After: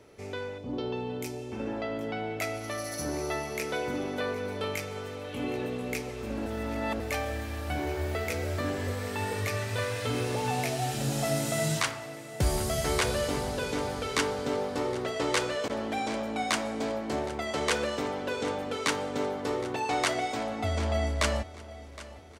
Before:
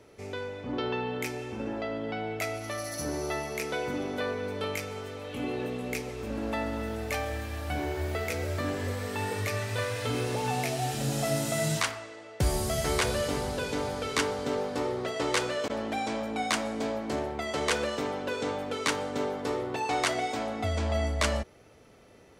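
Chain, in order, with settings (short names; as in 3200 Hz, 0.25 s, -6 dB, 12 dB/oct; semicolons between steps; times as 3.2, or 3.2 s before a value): 0.58–1.52 bell 1700 Hz -13 dB 1.5 oct; feedback echo 0.766 s, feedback 45%, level -17.5 dB; 6.46–7 reverse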